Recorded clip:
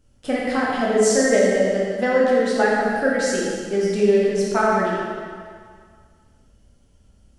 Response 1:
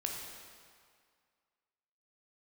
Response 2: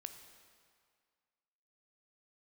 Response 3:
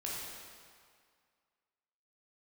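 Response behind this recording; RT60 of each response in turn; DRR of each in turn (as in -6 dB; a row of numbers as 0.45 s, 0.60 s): 3; 2.0 s, 2.0 s, 2.0 s; 0.0 dB, 7.0 dB, -5.5 dB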